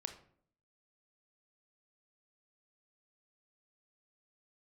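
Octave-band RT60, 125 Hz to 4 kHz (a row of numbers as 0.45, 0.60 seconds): 0.75, 0.75, 0.65, 0.55, 0.45, 0.35 seconds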